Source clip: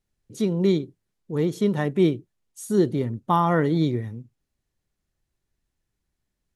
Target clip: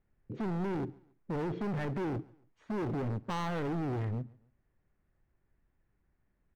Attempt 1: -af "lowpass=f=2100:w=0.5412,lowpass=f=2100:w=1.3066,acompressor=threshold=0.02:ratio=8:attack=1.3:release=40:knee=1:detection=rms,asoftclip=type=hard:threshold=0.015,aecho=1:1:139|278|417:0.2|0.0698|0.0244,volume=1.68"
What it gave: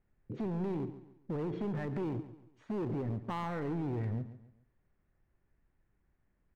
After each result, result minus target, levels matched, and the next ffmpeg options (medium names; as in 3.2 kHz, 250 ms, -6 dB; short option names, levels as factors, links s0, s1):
echo-to-direct +10 dB; compression: peak gain reduction +6.5 dB
-af "lowpass=f=2100:w=0.5412,lowpass=f=2100:w=1.3066,acompressor=threshold=0.02:ratio=8:attack=1.3:release=40:knee=1:detection=rms,asoftclip=type=hard:threshold=0.015,aecho=1:1:139|278:0.0631|0.0221,volume=1.68"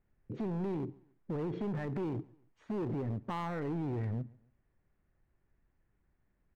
compression: peak gain reduction +6.5 dB
-af "lowpass=f=2100:w=0.5412,lowpass=f=2100:w=1.3066,acompressor=threshold=0.0473:ratio=8:attack=1.3:release=40:knee=1:detection=rms,asoftclip=type=hard:threshold=0.015,aecho=1:1:139|278:0.0631|0.0221,volume=1.68"